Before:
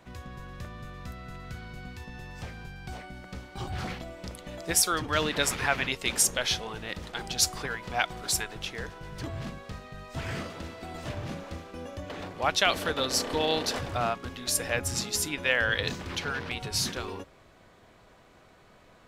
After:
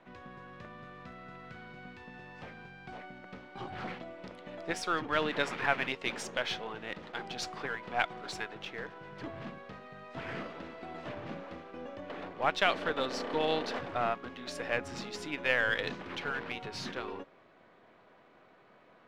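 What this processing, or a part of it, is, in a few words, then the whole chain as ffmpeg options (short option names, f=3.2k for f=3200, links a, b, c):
crystal radio: -af "highpass=200,lowpass=2.7k,aeval=exprs='if(lt(val(0),0),0.708*val(0),val(0))':c=same,volume=-1dB"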